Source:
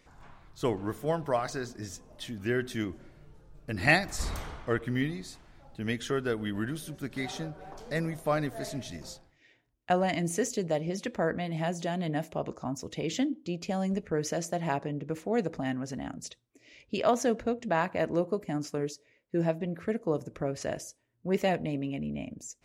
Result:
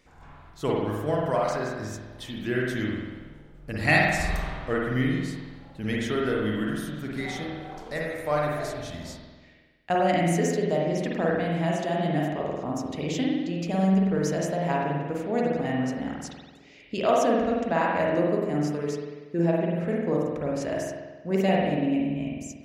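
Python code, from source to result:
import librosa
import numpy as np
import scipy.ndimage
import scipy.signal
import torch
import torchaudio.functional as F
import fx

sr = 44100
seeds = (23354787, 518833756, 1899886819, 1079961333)

y = fx.peak_eq(x, sr, hz=210.0, db=-12.5, octaves=0.78, at=(7.91, 8.84))
y = fx.rev_spring(y, sr, rt60_s=1.3, pass_ms=(47,), chirp_ms=50, drr_db=-3.0)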